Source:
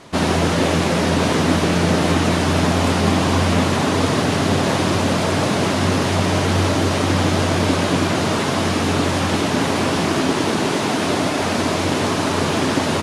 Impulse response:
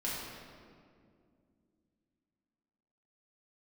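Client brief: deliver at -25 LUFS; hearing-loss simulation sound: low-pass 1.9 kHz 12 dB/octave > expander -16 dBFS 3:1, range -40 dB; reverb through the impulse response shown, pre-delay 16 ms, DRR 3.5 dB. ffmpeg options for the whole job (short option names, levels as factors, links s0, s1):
-filter_complex "[0:a]asplit=2[s0][s1];[1:a]atrim=start_sample=2205,adelay=16[s2];[s1][s2]afir=irnorm=-1:irlink=0,volume=0.398[s3];[s0][s3]amix=inputs=2:normalize=0,lowpass=1900,agate=range=0.01:threshold=0.158:ratio=3,volume=0.398"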